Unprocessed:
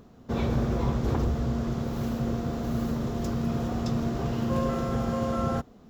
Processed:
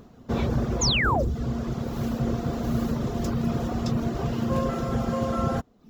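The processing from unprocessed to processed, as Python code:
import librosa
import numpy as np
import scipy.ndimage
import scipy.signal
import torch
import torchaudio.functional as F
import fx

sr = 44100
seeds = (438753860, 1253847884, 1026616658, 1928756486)

y = fx.spec_paint(x, sr, seeds[0], shape='fall', start_s=0.81, length_s=0.42, low_hz=490.0, high_hz=7200.0, level_db=-26.0)
y = fx.dereverb_blind(y, sr, rt60_s=0.62)
y = fx.rider(y, sr, range_db=10, speed_s=2.0)
y = y * librosa.db_to_amplitude(2.0)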